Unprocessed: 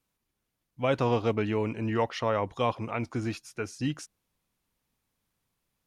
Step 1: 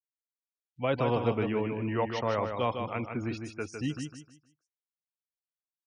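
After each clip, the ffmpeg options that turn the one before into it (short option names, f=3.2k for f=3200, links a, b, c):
-filter_complex "[0:a]afftfilt=real='re*gte(hypot(re,im),0.00708)':imag='im*gte(hypot(re,im),0.00708)':win_size=1024:overlap=0.75,acrossover=split=400|3100[a][b][c];[c]acompressor=mode=upward:threshold=-59dB:ratio=2.5[d];[a][b][d]amix=inputs=3:normalize=0,aecho=1:1:155|310|465|620:0.501|0.15|0.0451|0.0135,volume=-2.5dB"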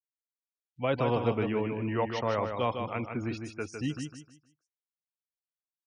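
-af anull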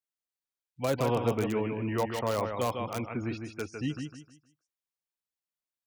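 -filter_complex "[0:a]acrossover=split=4600[a][b];[b]acompressor=threshold=-55dB:ratio=4:attack=1:release=60[c];[a][c]amix=inputs=2:normalize=0,acrossover=split=1100[d][e];[e]aeval=exprs='(mod(37.6*val(0)+1,2)-1)/37.6':c=same[f];[d][f]amix=inputs=2:normalize=0"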